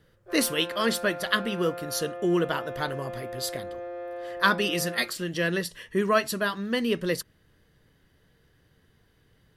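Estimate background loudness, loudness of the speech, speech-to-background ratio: -37.5 LUFS, -27.5 LUFS, 10.0 dB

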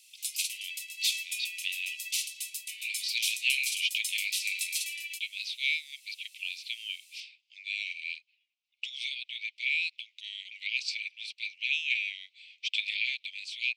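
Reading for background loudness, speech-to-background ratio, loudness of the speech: -34.0 LUFS, 1.0 dB, -33.0 LUFS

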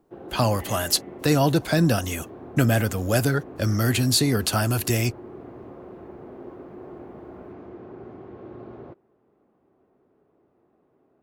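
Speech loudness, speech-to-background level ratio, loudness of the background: -23.0 LUFS, 18.5 dB, -41.5 LUFS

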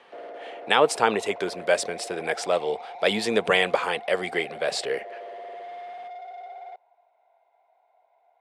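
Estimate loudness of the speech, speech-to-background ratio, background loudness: -25.0 LUFS, 15.0 dB, -40.0 LUFS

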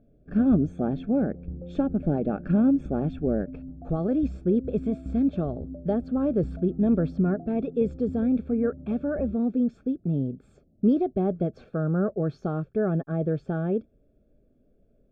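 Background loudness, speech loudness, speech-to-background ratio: -39.5 LUFS, -26.5 LUFS, 13.0 dB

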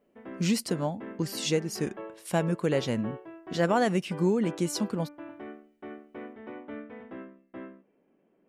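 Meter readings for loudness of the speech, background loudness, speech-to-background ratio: -29.5 LUFS, -44.0 LUFS, 14.5 dB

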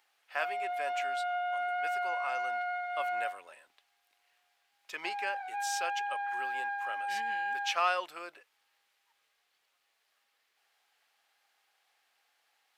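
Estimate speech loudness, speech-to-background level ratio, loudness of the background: -38.5 LUFS, -3.5 dB, -35.0 LUFS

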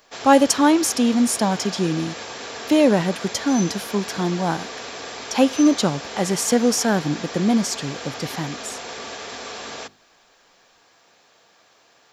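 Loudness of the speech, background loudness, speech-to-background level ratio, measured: -20.5 LUFS, -32.5 LUFS, 12.0 dB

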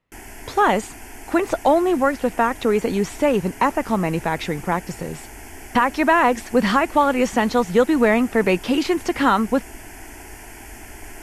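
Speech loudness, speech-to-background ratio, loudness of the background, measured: -20.0 LUFS, 19.0 dB, -39.0 LUFS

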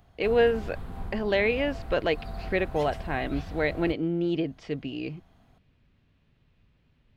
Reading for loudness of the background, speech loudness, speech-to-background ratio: -40.5 LUFS, -28.0 LUFS, 12.5 dB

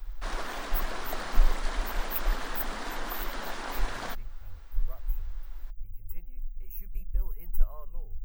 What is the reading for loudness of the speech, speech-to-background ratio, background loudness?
-38.5 LUFS, -1.0 dB, -37.5 LUFS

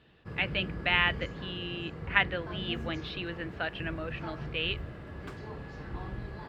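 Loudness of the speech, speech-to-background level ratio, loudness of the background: -32.5 LUFS, 8.5 dB, -41.0 LUFS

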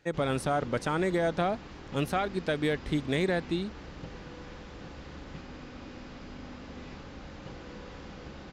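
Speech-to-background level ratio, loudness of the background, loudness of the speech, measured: 14.5 dB, -45.0 LUFS, -30.5 LUFS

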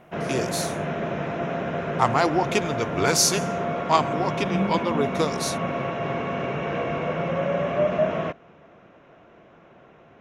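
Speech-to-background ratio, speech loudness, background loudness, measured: 2.0 dB, -25.0 LUFS, -27.0 LUFS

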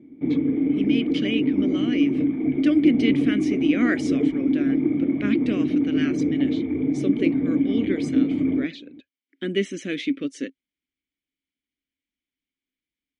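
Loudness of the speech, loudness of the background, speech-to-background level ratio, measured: -27.5 LUFS, -23.0 LUFS, -4.5 dB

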